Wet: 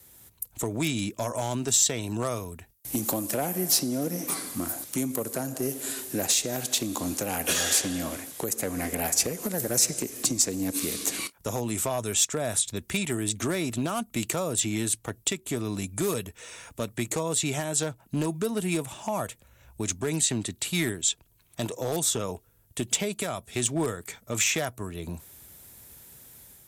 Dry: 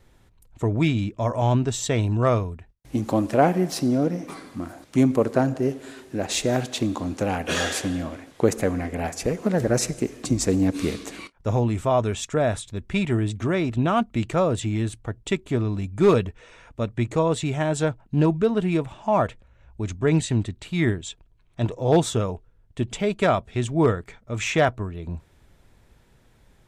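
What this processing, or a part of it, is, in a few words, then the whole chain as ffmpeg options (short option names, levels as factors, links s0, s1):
FM broadcast chain: -filter_complex "[0:a]highpass=67,dynaudnorm=f=100:g=5:m=1.58,acrossover=split=180|7000[s0][s1][s2];[s0]acompressor=threshold=0.0158:ratio=4[s3];[s1]acompressor=threshold=0.0708:ratio=4[s4];[s2]acompressor=threshold=0.00398:ratio=4[s5];[s3][s4][s5]amix=inputs=3:normalize=0,aemphasis=mode=production:type=50fm,alimiter=limit=0.188:level=0:latency=1:release=374,asoftclip=type=hard:threshold=0.126,lowpass=f=15000:w=0.5412,lowpass=f=15000:w=1.3066,aemphasis=mode=production:type=50fm,volume=0.75"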